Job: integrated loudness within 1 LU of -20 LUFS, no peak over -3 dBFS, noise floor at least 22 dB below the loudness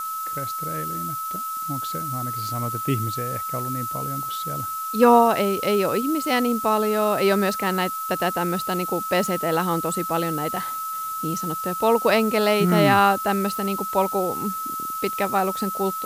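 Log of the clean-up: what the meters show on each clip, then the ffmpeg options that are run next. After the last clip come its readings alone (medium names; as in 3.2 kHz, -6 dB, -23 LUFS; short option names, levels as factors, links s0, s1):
steady tone 1.3 kHz; tone level -27 dBFS; noise floor -30 dBFS; noise floor target -45 dBFS; loudness -22.5 LUFS; peak level -3.5 dBFS; loudness target -20.0 LUFS
-> -af "bandreject=f=1300:w=30"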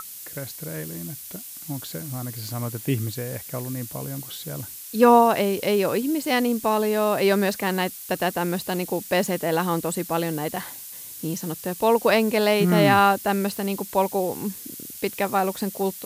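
steady tone not found; noise floor -39 dBFS; noise floor target -46 dBFS
-> -af "afftdn=nr=7:nf=-39"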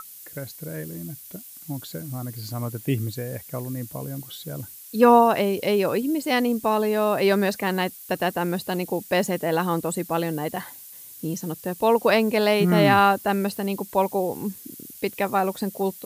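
noise floor -43 dBFS; noise floor target -46 dBFS
-> -af "afftdn=nr=6:nf=-43"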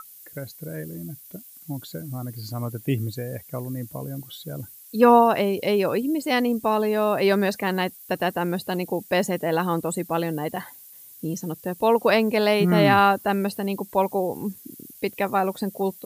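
noise floor -47 dBFS; loudness -23.5 LUFS; peak level -4.5 dBFS; loudness target -20.0 LUFS
-> -af "volume=1.5,alimiter=limit=0.708:level=0:latency=1"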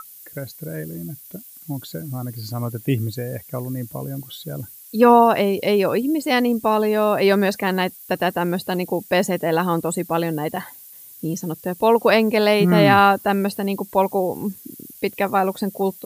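loudness -20.0 LUFS; peak level -3.0 dBFS; noise floor -43 dBFS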